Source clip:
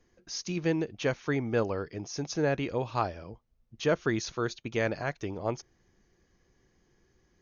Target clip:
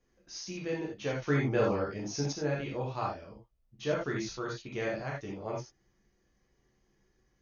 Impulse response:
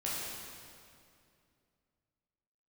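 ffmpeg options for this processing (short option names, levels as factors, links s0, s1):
-filter_complex "[1:a]atrim=start_sample=2205,atrim=end_sample=4410[s0];[0:a][s0]afir=irnorm=-1:irlink=0,asettb=1/sr,asplit=3[s1][s2][s3];[s1]atrim=end=1.224[s4];[s2]atrim=start=1.22:end=2.33,asetpts=PTS-STARTPTS,afade=t=in:d=0.004:c=qsin,afade=t=out:st=1.106:d=0.004:c=qsin,acontrast=53[s5];[s3]atrim=start=2.326[s6];[s4][s5]acrossfade=d=0.004:c1=hsin:c2=qsin[s7];[s7][s6]acrossfade=d=0.004:c1=qsin:c2=hsin,volume=0.501"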